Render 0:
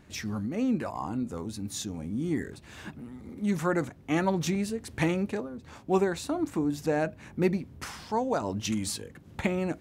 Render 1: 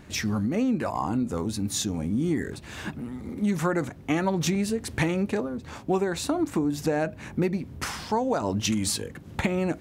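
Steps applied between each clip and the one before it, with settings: compressor 6:1, threshold -29 dBFS, peak gain reduction 10 dB; gain +7.5 dB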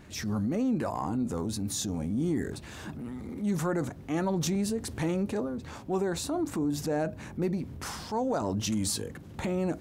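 dynamic EQ 2300 Hz, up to -7 dB, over -47 dBFS, Q 1.1; transient shaper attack -6 dB, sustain +3 dB; gain -2.5 dB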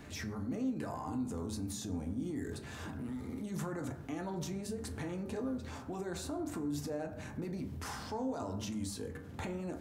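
limiter -26 dBFS, peak gain reduction 7.5 dB; on a send at -3.5 dB: reverb RT60 0.75 s, pre-delay 5 ms; on the sum: three-band squash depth 40%; gain -7 dB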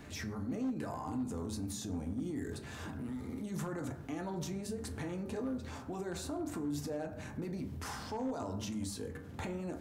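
hard clip -30.5 dBFS, distortion -26 dB

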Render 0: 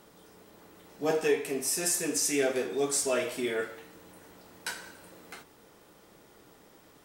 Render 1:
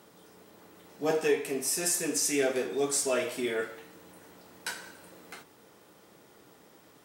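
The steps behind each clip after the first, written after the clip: HPF 85 Hz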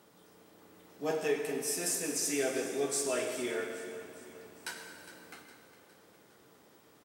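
feedback echo 0.41 s, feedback 51%, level -15 dB; on a send at -6.5 dB: reverb RT60 1.9 s, pre-delay 90 ms; on the sum: gain -5 dB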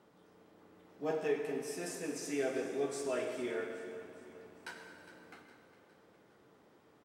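LPF 2000 Hz 6 dB/oct; gain -2 dB

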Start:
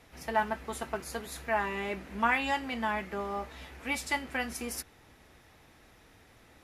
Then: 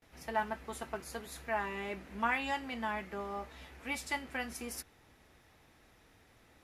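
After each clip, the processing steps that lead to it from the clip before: gate with hold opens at -50 dBFS; gain -5 dB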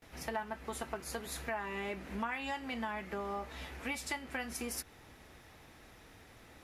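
compressor 4:1, threshold -43 dBFS, peak gain reduction 14 dB; gain +6.5 dB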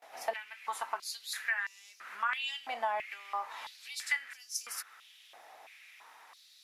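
stepped high-pass 3 Hz 720–5600 Hz

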